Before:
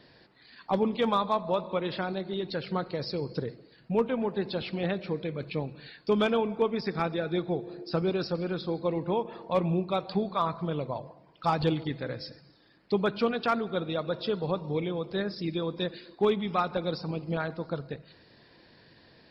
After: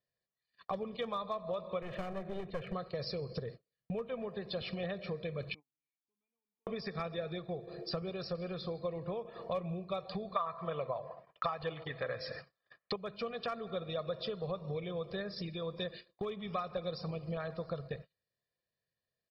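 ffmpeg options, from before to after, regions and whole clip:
ffmpeg -i in.wav -filter_complex "[0:a]asettb=1/sr,asplit=3[link_01][link_02][link_03];[link_01]atrim=end=1.824[link_04];[link_02]atrim=start=1.82:end=2.73,asetpts=PTS-STARTPTS,afade=type=in:duration=0.004:curve=qsin,afade=type=out:start_time=0.906:duration=0.004:curve=qsin,lowpass=frequency=2400:width=0.5412,lowpass=frequency=2400:width=1.3066,aeval=exprs='clip(val(0),-1,0.0141)':channel_layout=same[link_05];[link_03]atrim=start=2.726[link_06];[link_04][link_05]acrossfade=duration=0.004:curve1=hsin:curve2=qsin[link_07];[link_07][link_06]acrossfade=duration=0.004:curve1=qsin:curve2=hsin,asettb=1/sr,asplit=3[link_08][link_09][link_10];[link_08]atrim=end=5.544[link_11];[link_09]atrim=start=5.54:end=6.67,asetpts=PTS-STARTPTS,afade=type=in:duration=0.004:curve=qsin,afade=type=out:start_time=1.126:duration=0.004:curve=qsin,asplit=3[link_12][link_13][link_14];[link_12]bandpass=frequency=300:width_type=q:width=8,volume=0dB[link_15];[link_13]bandpass=frequency=870:width_type=q:width=8,volume=-6dB[link_16];[link_14]bandpass=frequency=2240:width_type=q:width=8,volume=-9dB[link_17];[link_15][link_16][link_17]amix=inputs=3:normalize=0,acompressor=threshold=-58dB:ratio=3:attack=3.2:release=140:knee=1:detection=peak[link_18];[link_10]atrim=start=6.666[link_19];[link_11][link_18]acrossfade=duration=0.004:curve1=hsin:curve2=qsin[link_20];[link_20][link_19]acrossfade=duration=0.004:curve1=qsin:curve2=hsin,asettb=1/sr,asplit=3[link_21][link_22][link_23];[link_21]atrim=end=10.364[link_24];[link_22]atrim=start=10.36:end=12.96,asetpts=PTS-STARTPTS,afade=type=in:duration=0.004:curve=qsin,afade=type=out:start_time=2.596:duration=0.004:curve=qsin,lowpass=frequency=3500:poles=1,equalizer=frequency=1400:width=0.35:gain=15[link_25];[link_23]atrim=start=12.956[link_26];[link_24][link_25]acrossfade=duration=0.004:curve1=hsin:curve2=qsin[link_27];[link_27][link_26]acrossfade=duration=0.004:curve1=qsin:curve2=hsin,acompressor=threshold=-36dB:ratio=10,aecho=1:1:1.7:0.71,agate=range=-37dB:threshold=-46dB:ratio=16:detection=peak" out.wav

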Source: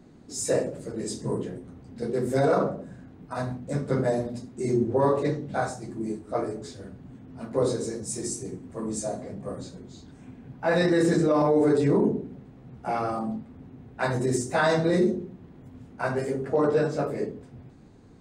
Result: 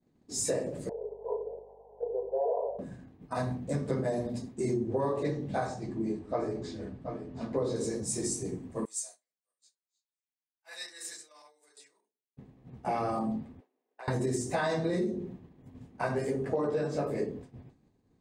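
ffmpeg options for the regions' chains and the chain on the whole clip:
ffmpeg -i in.wav -filter_complex "[0:a]asettb=1/sr,asplit=3[link_01][link_02][link_03];[link_01]atrim=end=0.894[link_04];[link_02]atrim=start=0.89:end=2.79,asetpts=PTS-STARTPTS,afade=type=in:duration=0.004:curve=qsin,afade=type=out:start_time=1.896:duration=0.004:curve=qsin,asuperpass=centerf=640:order=20:qfactor=1.1,acompressor=mode=upward:threshold=-34dB:ratio=2.5:attack=3.2:release=140:knee=2.83:detection=peak,aeval=exprs='val(0)+0.001*(sin(2*PI*50*n/s)+sin(2*PI*2*50*n/s)/2+sin(2*PI*3*50*n/s)/3+sin(2*PI*4*50*n/s)/4+sin(2*PI*5*50*n/s)/5)':channel_layout=same[link_05];[link_03]atrim=start=2.786[link_06];[link_04][link_05]acrossfade=duration=0.004:curve1=hsin:curve2=qsin[link_07];[link_07][link_06]acrossfade=duration=0.004:curve1=qsin:curve2=hsin,asettb=1/sr,asplit=3[link_08][link_09][link_10];[link_08]atrim=end=5.674[link_11];[link_09]atrim=start=5.67:end=7.76,asetpts=PTS-STARTPTS,afade=type=in:duration=0.004:curve=qsin,afade=type=out:start_time=2.086:duration=0.004:curve=qsin,lowpass=4900,aecho=1:1:727:0.266,atrim=end_sample=92169[link_12];[link_10]atrim=start=7.756[link_13];[link_11][link_12]acrossfade=duration=0.004:curve1=hsin:curve2=qsin[link_14];[link_14][link_13]acrossfade=duration=0.004:curve1=qsin:curve2=hsin,asettb=1/sr,asplit=3[link_15][link_16][link_17];[link_15]atrim=end=8.854[link_18];[link_16]atrim=start=8.85:end=12.37,asetpts=PTS-STARTPTS,afade=type=in:duration=0.004:curve=qsin,afade=type=out:start_time=3.516:duration=0.004:curve=qsin,highpass=frequency=1200:poles=1,aderivative[link_19];[link_17]atrim=start=12.366[link_20];[link_18][link_19]acrossfade=duration=0.004:curve1=hsin:curve2=qsin[link_21];[link_21][link_20]acrossfade=duration=0.004:curve1=qsin:curve2=hsin,asettb=1/sr,asplit=3[link_22][link_23][link_24];[link_22]atrim=end=13.604[link_25];[link_23]atrim=start=13.6:end=14.08,asetpts=PTS-STARTPTS,afade=type=in:duration=0.004:curve=qsin,afade=type=out:start_time=0.476:duration=0.004:curve=qsin,highpass=frequency=390:width=0.5412,highpass=frequency=390:width=1.3066,equalizer=frequency=520:width_type=o:width=1.5:gain=2,acompressor=threshold=-38dB:ratio=16:attack=3.2:release=140:knee=1:detection=peak[link_26];[link_24]atrim=start=14.076[link_27];[link_25][link_26]acrossfade=duration=0.004:curve1=hsin:curve2=qsin[link_28];[link_28][link_27]acrossfade=duration=0.004:curve1=qsin:curve2=hsin,bandreject=frequency=1400:width=7.4,agate=range=-33dB:threshold=-40dB:ratio=3:detection=peak,acompressor=threshold=-27dB:ratio=6" out.wav

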